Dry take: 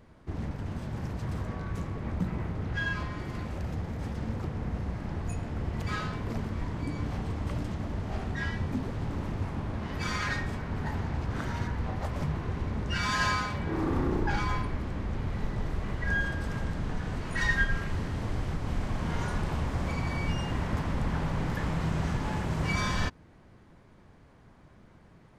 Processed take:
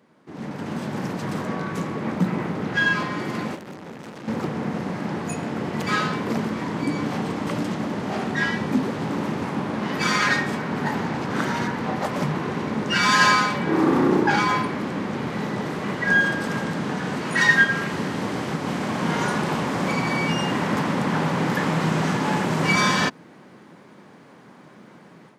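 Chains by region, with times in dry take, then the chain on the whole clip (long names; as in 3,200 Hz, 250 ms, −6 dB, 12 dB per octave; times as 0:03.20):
0:03.55–0:04.28: high-pass filter 47 Hz 24 dB per octave + tube saturation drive 44 dB, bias 0.55
whole clip: high-pass filter 170 Hz 24 dB per octave; notch filter 670 Hz, Q 20; automatic gain control gain up to 12 dB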